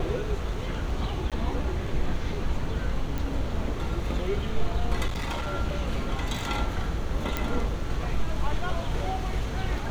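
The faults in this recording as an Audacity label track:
1.300000	1.320000	drop-out 17 ms
3.180000	3.180000	click
5.070000	5.550000	clipping −26.5 dBFS
7.370000	7.370000	click −12 dBFS

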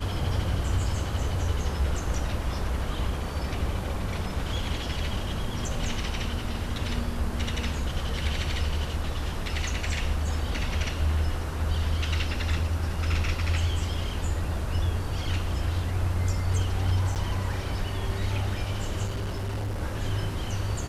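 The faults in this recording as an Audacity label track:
17.150000	17.160000	drop-out 8.3 ms
19.060000	19.810000	clipping −27 dBFS

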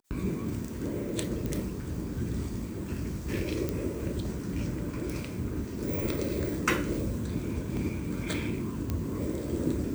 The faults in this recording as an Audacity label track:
1.460000	1.460000	click
3.690000	3.690000	click −16 dBFS
7.770000	7.770000	drop-out 2.6 ms
8.900000	8.900000	click −17 dBFS

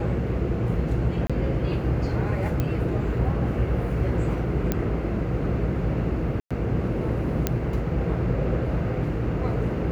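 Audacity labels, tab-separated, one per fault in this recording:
1.270000	1.300000	drop-out 26 ms
2.600000	2.600000	click −13 dBFS
4.720000	4.720000	click −10 dBFS
6.400000	6.510000	drop-out 106 ms
7.470000	7.470000	click −7 dBFS

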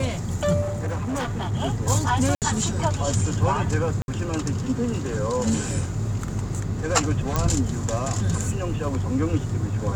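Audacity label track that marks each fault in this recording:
0.610000	1.540000	clipping −23.5 dBFS
2.350000	2.420000	drop-out 68 ms
4.020000	4.080000	drop-out 61 ms
7.360000	7.360000	click −8 dBFS

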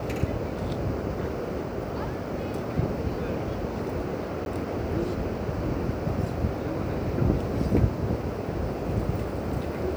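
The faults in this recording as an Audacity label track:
4.450000	4.460000	drop-out 11 ms

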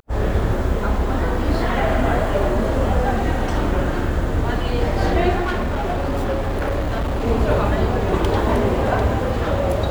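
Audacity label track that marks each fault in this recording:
5.420000	7.280000	clipping −18 dBFS

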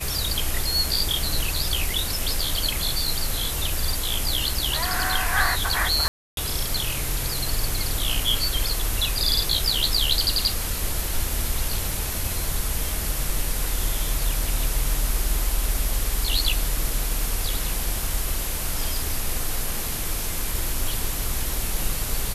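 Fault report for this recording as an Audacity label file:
6.080000	6.370000	drop-out 292 ms

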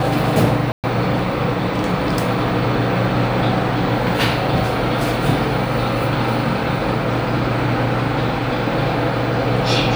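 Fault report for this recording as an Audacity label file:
0.720000	0.840000	drop-out 118 ms

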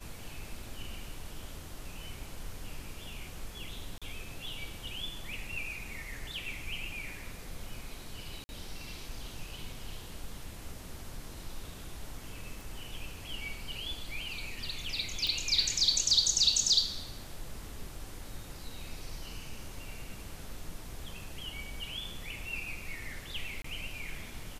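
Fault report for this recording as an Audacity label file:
3.980000	4.020000	drop-out 36 ms
8.440000	8.490000	drop-out 50 ms
12.610000	12.610000	click
15.270000	15.270000	click
23.620000	23.640000	drop-out 24 ms

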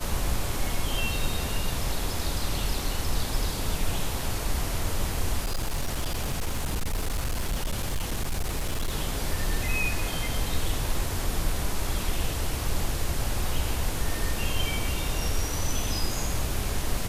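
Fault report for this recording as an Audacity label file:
5.440000	8.940000	clipping −23.5 dBFS

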